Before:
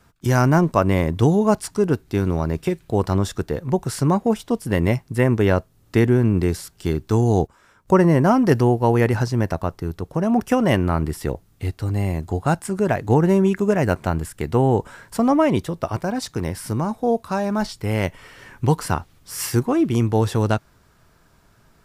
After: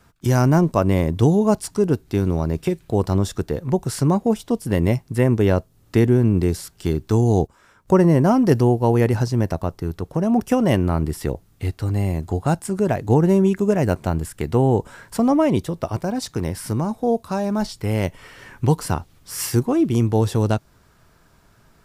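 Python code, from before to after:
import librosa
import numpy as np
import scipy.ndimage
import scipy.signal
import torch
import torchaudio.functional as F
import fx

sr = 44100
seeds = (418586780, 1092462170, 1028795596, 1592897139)

y = fx.dynamic_eq(x, sr, hz=1600.0, q=0.74, threshold_db=-36.0, ratio=4.0, max_db=-6)
y = y * librosa.db_to_amplitude(1.0)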